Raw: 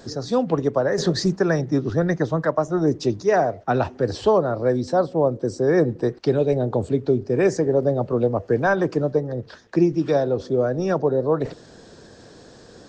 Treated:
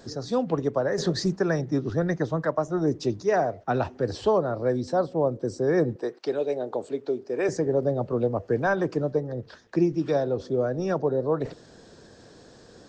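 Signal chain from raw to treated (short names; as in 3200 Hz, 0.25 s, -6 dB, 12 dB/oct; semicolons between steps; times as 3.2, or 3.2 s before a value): 5.96–7.49 HPF 380 Hz 12 dB/oct; gain -4.5 dB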